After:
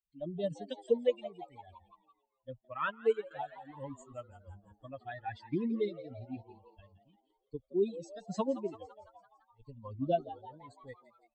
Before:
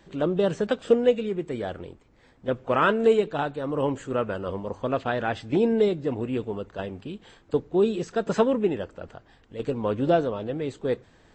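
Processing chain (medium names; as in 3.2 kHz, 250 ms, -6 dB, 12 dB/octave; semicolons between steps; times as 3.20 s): expander on every frequency bin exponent 3; frequency-shifting echo 169 ms, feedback 57%, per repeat +110 Hz, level -15.5 dB; 2.65–3.31 s: upward expansion 1.5:1, over -41 dBFS; trim -5 dB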